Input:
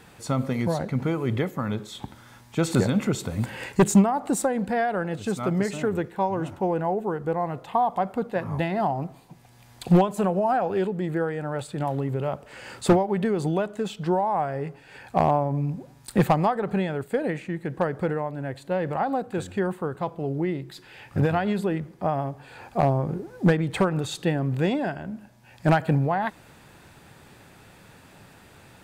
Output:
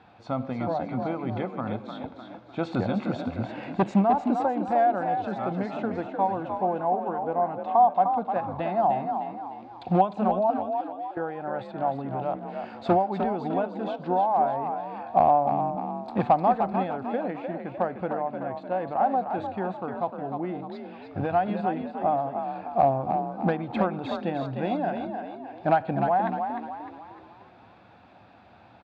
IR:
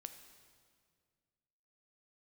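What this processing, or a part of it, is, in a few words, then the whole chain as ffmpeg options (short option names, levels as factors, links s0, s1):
frequency-shifting delay pedal into a guitar cabinet: -filter_complex "[0:a]asettb=1/sr,asplit=3[s0][s1][s2];[s0]atrim=end=10.504[s3];[s1]atrim=start=10.5:end=11.17,asetpts=PTS-STARTPTS,afade=t=in:d=0.004:c=qsin,afade=t=out:st=0.666:d=0.004:c=qsin,aderivative[s4];[s2]atrim=start=11.166[s5];[s3][s4]acrossfade=d=0.004:c1=hsin:c2=qsin[s6];[s6][s5]acrossfade=d=0.004:c1=qsin:c2=hsin,asplit=6[s7][s8][s9][s10][s11][s12];[s8]adelay=303,afreqshift=46,volume=0.447[s13];[s9]adelay=606,afreqshift=92,volume=0.202[s14];[s10]adelay=909,afreqshift=138,volume=0.0902[s15];[s11]adelay=1212,afreqshift=184,volume=0.0407[s16];[s12]adelay=1515,afreqshift=230,volume=0.0184[s17];[s7][s13][s14][s15][s16][s17]amix=inputs=6:normalize=0,highpass=81,equalizer=f=150:t=q:w=4:g=-10,equalizer=f=420:t=q:w=4:g=-7,equalizer=f=730:t=q:w=4:g=9,equalizer=f=1900:t=q:w=4:g=-8,equalizer=f=3000:t=q:w=4:g=-6,lowpass=f=3600:w=0.5412,lowpass=f=3600:w=1.3066,volume=0.708"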